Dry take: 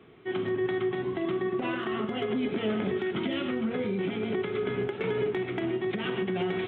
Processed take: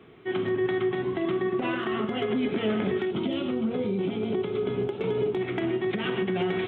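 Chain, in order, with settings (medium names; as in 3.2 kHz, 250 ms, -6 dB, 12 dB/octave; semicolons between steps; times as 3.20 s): 3.05–5.41 s: peaking EQ 1.8 kHz -11.5 dB 0.91 oct; trim +2.5 dB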